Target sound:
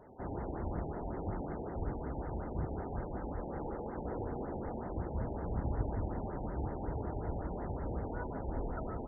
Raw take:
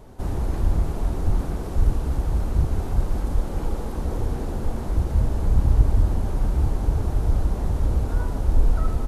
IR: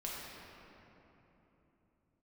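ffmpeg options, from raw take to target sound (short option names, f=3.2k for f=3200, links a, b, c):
-filter_complex "[0:a]highpass=f=320:p=1,bandreject=f=1.1k:w=13,asplit=2[a][b];[1:a]atrim=start_sample=2205,adelay=140[c];[b][c]afir=irnorm=-1:irlink=0,volume=-20.5dB[d];[a][d]amix=inputs=2:normalize=0,aresample=16000,aresample=44100,afftfilt=real='re*lt(b*sr/1024,890*pow(2200/890,0.5+0.5*sin(2*PI*5.4*pts/sr)))':imag='im*lt(b*sr/1024,890*pow(2200/890,0.5+0.5*sin(2*PI*5.4*pts/sr)))':win_size=1024:overlap=0.75,volume=-4dB"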